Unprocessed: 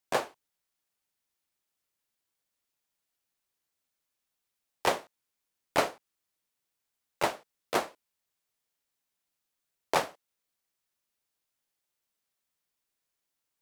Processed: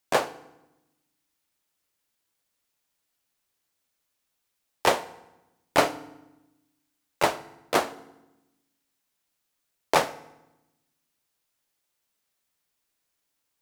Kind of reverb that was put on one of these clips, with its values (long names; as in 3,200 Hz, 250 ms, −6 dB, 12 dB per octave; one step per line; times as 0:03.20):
feedback delay network reverb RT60 0.96 s, low-frequency decay 1.45×, high-frequency decay 0.8×, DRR 14 dB
level +5.5 dB